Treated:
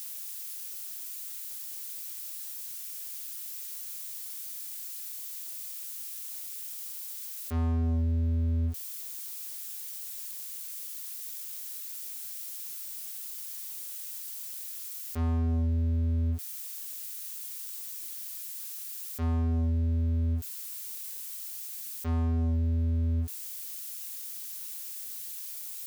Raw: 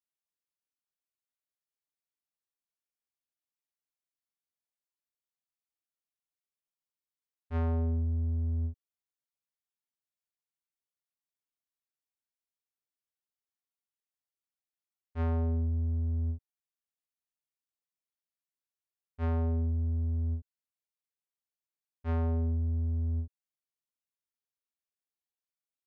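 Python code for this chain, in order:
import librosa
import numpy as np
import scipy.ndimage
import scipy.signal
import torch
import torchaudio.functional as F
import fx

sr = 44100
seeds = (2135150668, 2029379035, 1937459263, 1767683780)

y = x + 0.5 * 10.0 ** (-43.5 / 20.0) * np.diff(np.sign(x), prepend=np.sign(x[:1]))
y = scipy.signal.sosfilt(scipy.signal.butter(2, 97.0, 'highpass', fs=sr, output='sos'), y)
y = fx.notch(y, sr, hz=930.0, q=13.0)
y = fx.leveller(y, sr, passes=3)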